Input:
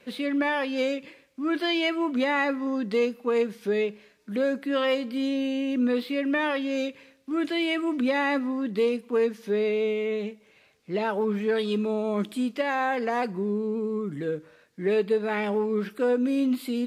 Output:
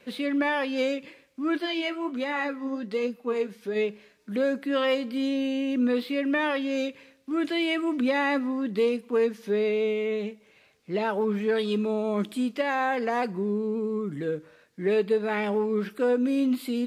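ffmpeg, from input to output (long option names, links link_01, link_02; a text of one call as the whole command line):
ffmpeg -i in.wav -filter_complex "[0:a]asplit=3[link_01][link_02][link_03];[link_01]afade=type=out:start_time=1.57:duration=0.02[link_04];[link_02]flanger=delay=3.7:depth=8.3:regen=58:speed=1.3:shape=triangular,afade=type=in:start_time=1.57:duration=0.02,afade=type=out:start_time=3.75:duration=0.02[link_05];[link_03]afade=type=in:start_time=3.75:duration=0.02[link_06];[link_04][link_05][link_06]amix=inputs=3:normalize=0" out.wav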